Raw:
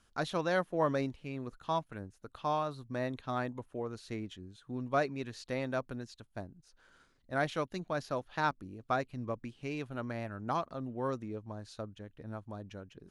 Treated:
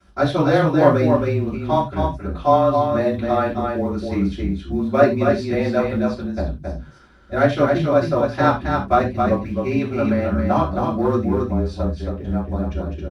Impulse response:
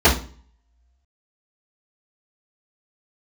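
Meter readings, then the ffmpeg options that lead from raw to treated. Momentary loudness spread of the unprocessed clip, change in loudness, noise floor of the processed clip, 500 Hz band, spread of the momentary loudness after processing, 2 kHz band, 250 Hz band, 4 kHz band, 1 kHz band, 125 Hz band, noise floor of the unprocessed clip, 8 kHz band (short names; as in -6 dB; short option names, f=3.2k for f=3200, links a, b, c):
14 LU, +17.0 dB, -39 dBFS, +18.0 dB, 9 LU, +12.0 dB, +19.5 dB, +11.0 dB, +15.5 dB, +19.0 dB, -69 dBFS, n/a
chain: -filter_complex "[0:a]asplit=2[a][b];[b]volume=31dB,asoftclip=hard,volume=-31dB,volume=-9dB[c];[a][c]amix=inputs=2:normalize=0,afreqshift=-25,acrusher=bits=8:mode=log:mix=0:aa=0.000001,aecho=1:1:270:0.596[d];[1:a]atrim=start_sample=2205,atrim=end_sample=3969,asetrate=37044,aresample=44100[e];[d][e]afir=irnorm=-1:irlink=0,volume=-13dB"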